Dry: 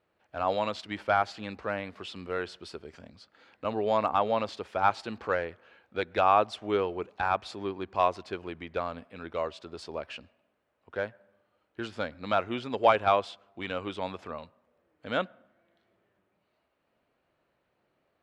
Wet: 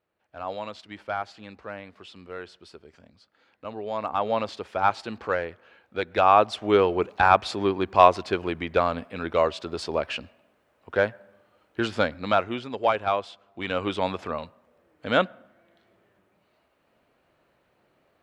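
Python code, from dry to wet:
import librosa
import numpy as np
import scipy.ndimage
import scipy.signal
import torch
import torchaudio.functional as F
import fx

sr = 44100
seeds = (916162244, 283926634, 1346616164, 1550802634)

y = fx.gain(x, sr, db=fx.line((3.91, -5.0), (4.34, 2.5), (5.98, 2.5), (7.01, 10.0), (12.0, 10.0), (12.76, -1.0), (13.29, -1.0), (13.85, 8.0)))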